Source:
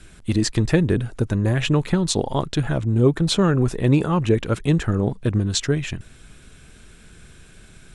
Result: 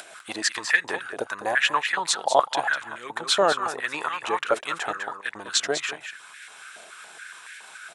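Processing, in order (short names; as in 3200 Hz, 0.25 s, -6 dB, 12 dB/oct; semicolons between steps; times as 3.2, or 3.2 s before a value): upward compressor, threshold -33 dBFS; echo 0.201 s -9 dB; stepped high-pass 7.1 Hz 670–1800 Hz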